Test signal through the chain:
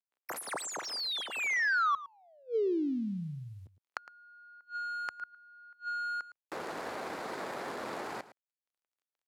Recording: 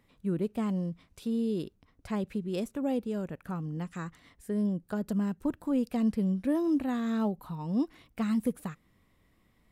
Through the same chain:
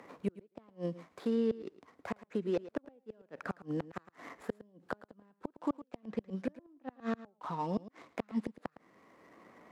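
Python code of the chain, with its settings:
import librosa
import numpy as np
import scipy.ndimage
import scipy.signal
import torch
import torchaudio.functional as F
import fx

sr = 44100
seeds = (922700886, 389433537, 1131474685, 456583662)

y = scipy.ndimage.median_filter(x, 15, mode='constant')
y = scipy.signal.sosfilt(scipy.signal.butter(2, 400.0, 'highpass', fs=sr, output='sos'), y)
y = fx.env_lowpass_down(y, sr, base_hz=1900.0, full_db=-28.5)
y = fx.high_shelf(y, sr, hz=3900.0, db=-6.5)
y = fx.rider(y, sr, range_db=5, speed_s=2.0)
y = fx.gate_flip(y, sr, shuts_db=-29.0, range_db=-38)
y = y + 10.0 ** (-17.0 / 20.0) * np.pad(y, (int(110 * sr / 1000.0), 0))[:len(y)]
y = fx.band_squash(y, sr, depth_pct=40)
y = F.gain(torch.from_numpy(y), 8.5).numpy()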